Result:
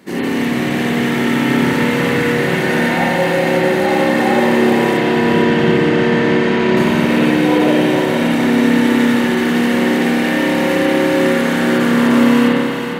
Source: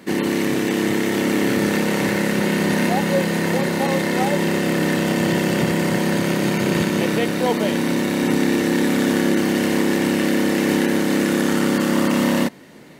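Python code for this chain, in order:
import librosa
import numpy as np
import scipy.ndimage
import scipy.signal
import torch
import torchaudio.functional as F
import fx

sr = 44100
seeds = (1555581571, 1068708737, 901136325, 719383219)

y = fx.lowpass(x, sr, hz=5000.0, slope=12, at=(4.97, 6.77))
y = fx.echo_feedback(y, sr, ms=454, feedback_pct=46, wet_db=-7.0)
y = fx.rev_spring(y, sr, rt60_s=2.0, pass_ms=(46, 51), chirp_ms=40, drr_db=-8.0)
y = y * librosa.db_to_amplitude(-3.0)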